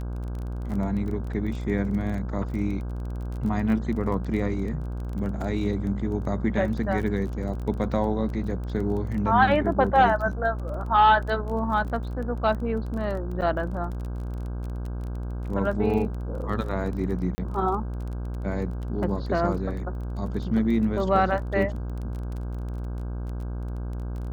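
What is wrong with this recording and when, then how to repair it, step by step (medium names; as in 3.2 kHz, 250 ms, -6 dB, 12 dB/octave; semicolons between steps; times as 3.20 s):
buzz 60 Hz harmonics 27 -31 dBFS
crackle 21 per s -33 dBFS
13.41–13.42 s: dropout 7.9 ms
17.35–17.38 s: dropout 30 ms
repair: de-click; de-hum 60 Hz, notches 27; interpolate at 13.41 s, 7.9 ms; interpolate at 17.35 s, 30 ms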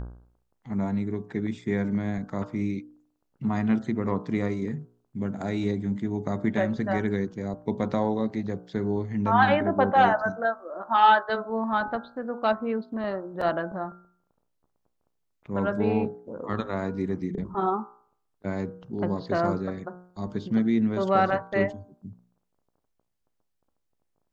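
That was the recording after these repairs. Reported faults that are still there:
nothing left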